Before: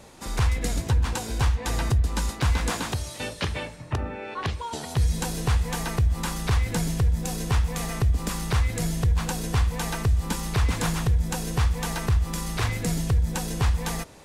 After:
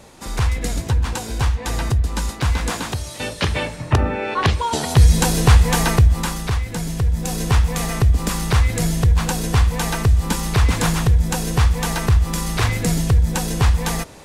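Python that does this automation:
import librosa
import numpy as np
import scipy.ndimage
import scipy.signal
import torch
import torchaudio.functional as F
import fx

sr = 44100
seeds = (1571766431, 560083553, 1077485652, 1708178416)

y = fx.gain(x, sr, db=fx.line((3.03, 3.5), (3.83, 11.5), (5.9, 11.5), (6.68, -0.5), (7.43, 7.0)))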